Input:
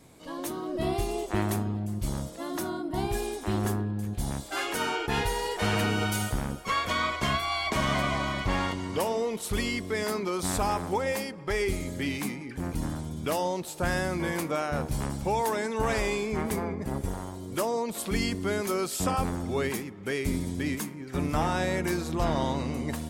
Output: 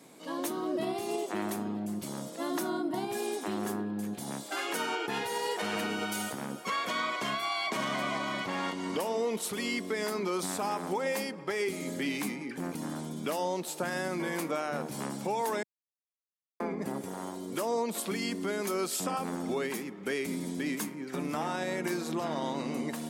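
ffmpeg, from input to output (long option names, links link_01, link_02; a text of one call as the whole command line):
ffmpeg -i in.wav -filter_complex "[0:a]asplit=3[link_01][link_02][link_03];[link_01]atrim=end=15.63,asetpts=PTS-STARTPTS,afade=type=out:start_time=15.626:duration=0.004:curve=hsin[link_04];[link_02]atrim=start=15.63:end=16.6,asetpts=PTS-STARTPTS,volume=0[link_05];[link_03]atrim=start=16.6,asetpts=PTS-STARTPTS,afade=type=in:duration=0.004:curve=hsin[link_06];[link_04][link_05][link_06]concat=n=3:v=0:a=1,alimiter=limit=-24dB:level=0:latency=1:release=179,highpass=frequency=180:width=0.5412,highpass=frequency=180:width=1.3066,volume=1.5dB" out.wav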